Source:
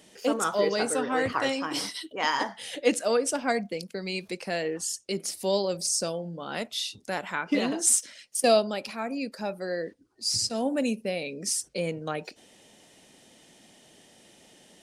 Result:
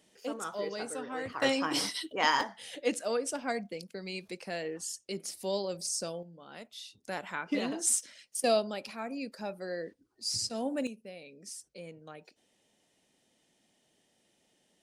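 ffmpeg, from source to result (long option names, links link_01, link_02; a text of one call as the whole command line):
ffmpeg -i in.wav -af "asetnsamples=nb_out_samples=441:pad=0,asendcmd='1.42 volume volume 0dB;2.41 volume volume -7dB;6.23 volume volume -14.5dB;7.04 volume volume -6dB;10.87 volume volume -16dB',volume=-11dB" out.wav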